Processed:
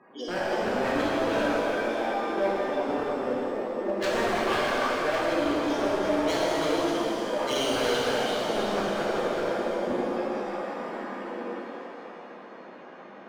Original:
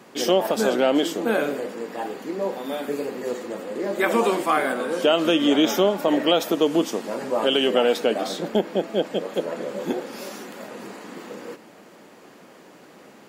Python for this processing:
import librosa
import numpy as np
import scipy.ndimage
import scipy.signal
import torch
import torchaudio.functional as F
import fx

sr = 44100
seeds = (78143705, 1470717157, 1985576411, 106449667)

p1 = fx.spec_gate(x, sr, threshold_db=-15, keep='strong')
p2 = scipy.signal.sosfilt(scipy.signal.butter(2, 3700.0, 'lowpass', fs=sr, output='sos'), p1)
p3 = fx.low_shelf(p2, sr, hz=470.0, db=-8.0)
p4 = p3 + fx.echo_split(p3, sr, split_hz=570.0, low_ms=84, high_ms=330, feedback_pct=52, wet_db=-5.5, dry=0)
p5 = fx.rider(p4, sr, range_db=4, speed_s=2.0)
p6 = 10.0 ** (-21.5 / 20.0) * (np.abs((p5 / 10.0 ** (-21.5 / 20.0) + 3.0) % 4.0 - 2.0) - 1.0)
p7 = fx.rev_shimmer(p6, sr, seeds[0], rt60_s=2.6, semitones=7, shimmer_db=-8, drr_db=-5.5)
y = p7 * librosa.db_to_amplitude(-5.5)